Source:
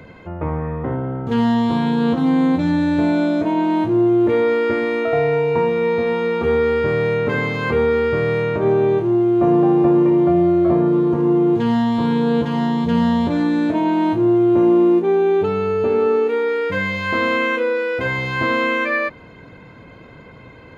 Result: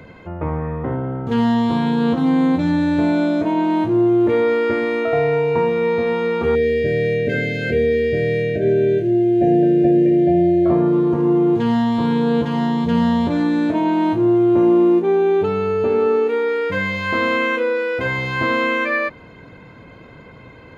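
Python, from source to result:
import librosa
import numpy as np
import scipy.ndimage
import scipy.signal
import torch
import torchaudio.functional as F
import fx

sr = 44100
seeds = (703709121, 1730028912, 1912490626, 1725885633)

y = fx.brickwall_bandstop(x, sr, low_hz=740.0, high_hz=1500.0, at=(6.55, 10.66))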